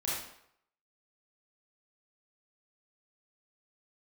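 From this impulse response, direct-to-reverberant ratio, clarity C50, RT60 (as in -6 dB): -7.5 dB, -1.5 dB, 0.70 s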